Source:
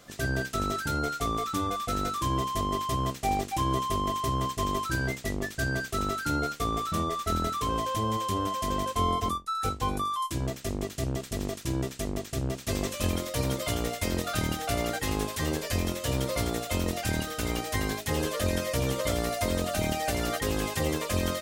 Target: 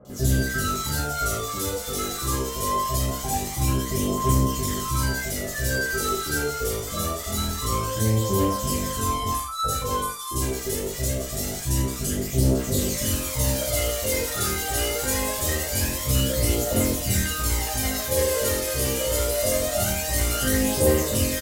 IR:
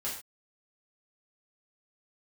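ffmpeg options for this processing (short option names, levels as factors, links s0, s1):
-filter_complex "[0:a]aemphasis=mode=production:type=cd,asplit=2[s0][s1];[s1]alimiter=limit=0.126:level=0:latency=1:release=159,volume=1.41[s2];[s0][s2]amix=inputs=2:normalize=0,aphaser=in_gain=1:out_gain=1:delay=2.6:decay=0.58:speed=0.24:type=triangular,acrossover=split=1000|3300[s3][s4][s5];[s5]adelay=50[s6];[s4]adelay=100[s7];[s3][s7][s6]amix=inputs=3:normalize=0[s8];[1:a]atrim=start_sample=2205[s9];[s8][s9]afir=irnorm=-1:irlink=0,volume=0.501"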